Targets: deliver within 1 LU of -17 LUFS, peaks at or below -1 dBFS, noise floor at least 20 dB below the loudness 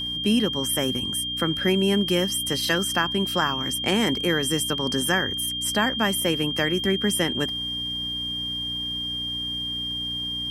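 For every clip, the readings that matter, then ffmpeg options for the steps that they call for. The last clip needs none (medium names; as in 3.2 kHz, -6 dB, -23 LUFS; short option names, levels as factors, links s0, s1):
hum 60 Hz; highest harmonic 300 Hz; hum level -38 dBFS; steady tone 3.2 kHz; tone level -27 dBFS; loudness -23.5 LUFS; peak level -7.0 dBFS; loudness target -17.0 LUFS
-> -af "bandreject=f=60:t=h:w=4,bandreject=f=120:t=h:w=4,bandreject=f=180:t=h:w=4,bandreject=f=240:t=h:w=4,bandreject=f=300:t=h:w=4"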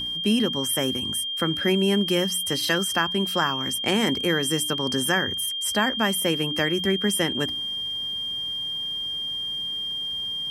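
hum not found; steady tone 3.2 kHz; tone level -27 dBFS
-> -af "bandreject=f=3200:w=30"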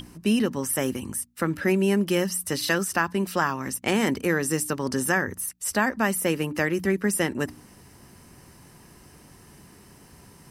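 steady tone not found; loudness -25.0 LUFS; peak level -8.0 dBFS; loudness target -17.0 LUFS
-> -af "volume=2.51,alimiter=limit=0.891:level=0:latency=1"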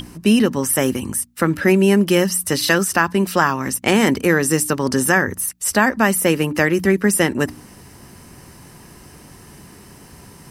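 loudness -17.5 LUFS; peak level -1.0 dBFS; noise floor -44 dBFS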